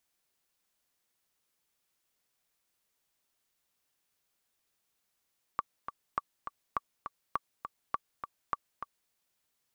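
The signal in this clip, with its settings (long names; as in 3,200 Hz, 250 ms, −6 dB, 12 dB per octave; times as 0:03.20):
click track 204 BPM, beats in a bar 2, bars 6, 1,150 Hz, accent 8.5 dB −16.5 dBFS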